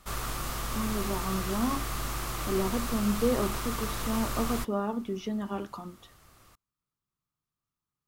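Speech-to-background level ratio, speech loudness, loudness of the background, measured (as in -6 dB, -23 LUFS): 1.5 dB, -32.5 LUFS, -34.0 LUFS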